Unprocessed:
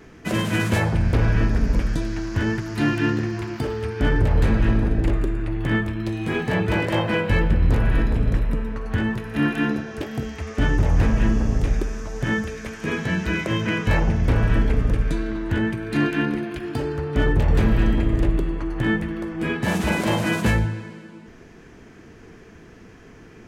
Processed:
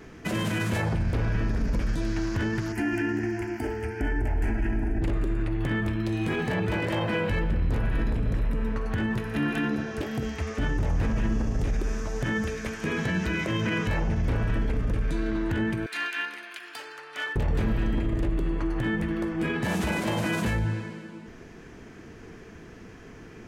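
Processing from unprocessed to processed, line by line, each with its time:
2.72–5.02 fixed phaser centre 770 Hz, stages 8
15.86–17.36 HPF 1400 Hz
whole clip: limiter -19 dBFS

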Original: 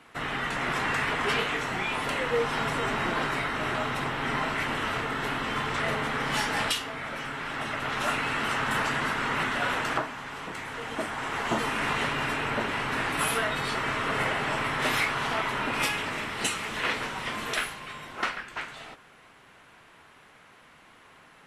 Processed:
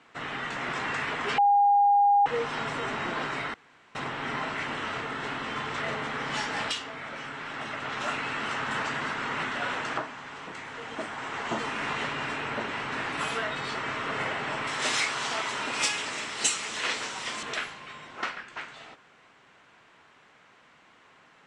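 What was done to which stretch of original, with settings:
1.38–2.26 bleep 811 Hz -14 dBFS
3.54–3.95 room tone
14.67–17.43 tone controls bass -5 dB, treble +14 dB
whole clip: steep low-pass 8100 Hz 36 dB/oct; low shelf 72 Hz -12 dB; gain -3 dB

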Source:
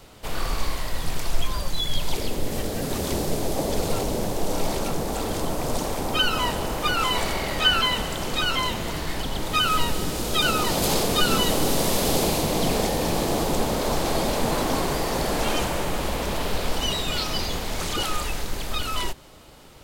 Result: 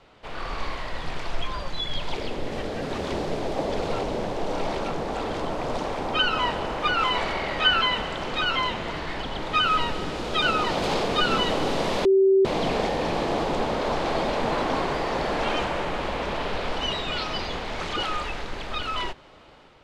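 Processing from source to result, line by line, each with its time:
12.05–12.45 bleep 386 Hz -13 dBFS
whole clip: LPF 3000 Hz 12 dB/oct; low shelf 300 Hz -8.5 dB; AGC gain up to 4.5 dB; gain -2.5 dB

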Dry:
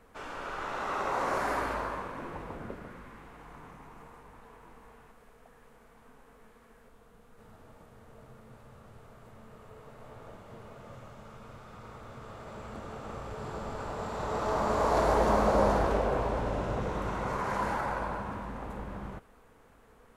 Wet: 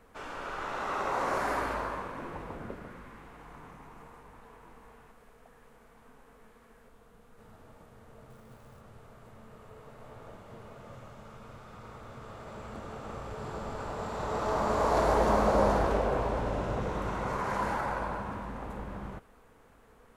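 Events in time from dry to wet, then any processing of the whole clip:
8.3–8.81 short-mantissa float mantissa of 2-bit

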